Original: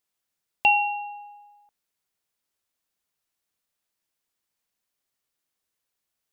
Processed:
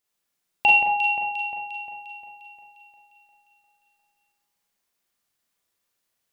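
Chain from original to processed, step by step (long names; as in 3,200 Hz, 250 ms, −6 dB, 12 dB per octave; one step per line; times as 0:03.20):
delay that swaps between a low-pass and a high-pass 176 ms, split 2,200 Hz, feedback 72%, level −5 dB
four-comb reverb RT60 0.51 s, combs from 32 ms, DRR −1.5 dB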